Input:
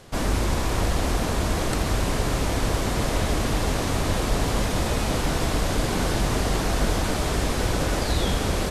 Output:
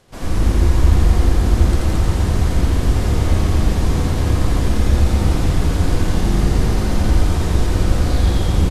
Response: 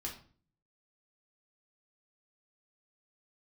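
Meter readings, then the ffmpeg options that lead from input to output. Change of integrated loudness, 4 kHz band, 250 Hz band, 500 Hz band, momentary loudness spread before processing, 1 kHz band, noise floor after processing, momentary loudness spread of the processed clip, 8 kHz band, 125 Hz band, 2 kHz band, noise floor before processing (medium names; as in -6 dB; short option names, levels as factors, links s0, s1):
+7.0 dB, -1.0 dB, +5.5 dB, +1.0 dB, 1 LU, -0.5 dB, -20 dBFS, 3 LU, -1.5 dB, +10.5 dB, -1.0 dB, -26 dBFS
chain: -filter_complex "[0:a]aecho=1:1:81.63|221.6:0.794|0.708,asplit=2[s0][s1];[1:a]atrim=start_sample=2205,lowshelf=f=340:g=11,adelay=87[s2];[s1][s2]afir=irnorm=-1:irlink=0,volume=1[s3];[s0][s3]amix=inputs=2:normalize=0,volume=0.447"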